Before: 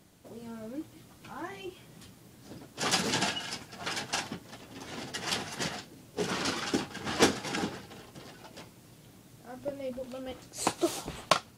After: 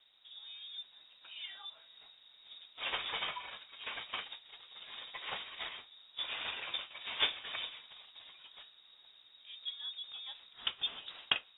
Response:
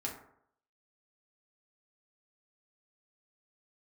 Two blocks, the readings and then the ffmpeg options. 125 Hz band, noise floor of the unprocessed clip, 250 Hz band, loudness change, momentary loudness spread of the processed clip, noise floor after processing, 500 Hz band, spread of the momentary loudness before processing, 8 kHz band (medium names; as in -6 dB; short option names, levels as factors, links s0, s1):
-24.0 dB, -56 dBFS, -28.0 dB, -6.5 dB, 20 LU, -63 dBFS, -19.0 dB, 21 LU, under -40 dB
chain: -filter_complex "[0:a]acrossover=split=300[s0][s1];[s0]acompressor=threshold=0.00562:ratio=6[s2];[s2][s1]amix=inputs=2:normalize=0,lowpass=f=3300:t=q:w=0.5098,lowpass=f=3300:t=q:w=0.6013,lowpass=f=3300:t=q:w=0.9,lowpass=f=3300:t=q:w=2.563,afreqshift=-3900,volume=0.501"